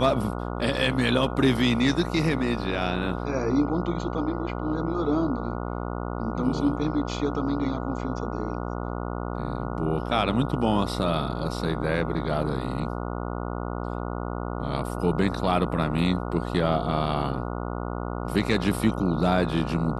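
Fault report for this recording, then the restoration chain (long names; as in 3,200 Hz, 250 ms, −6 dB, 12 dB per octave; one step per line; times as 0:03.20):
mains buzz 60 Hz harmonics 24 −31 dBFS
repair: hum removal 60 Hz, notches 24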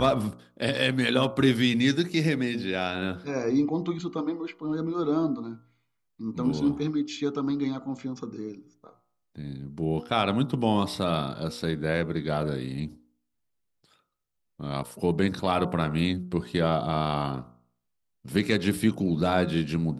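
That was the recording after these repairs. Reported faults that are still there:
none of them is left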